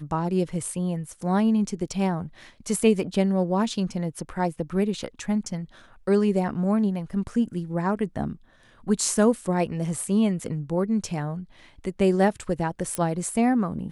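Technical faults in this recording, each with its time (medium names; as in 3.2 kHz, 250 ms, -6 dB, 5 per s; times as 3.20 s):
12.95 s: pop -13 dBFS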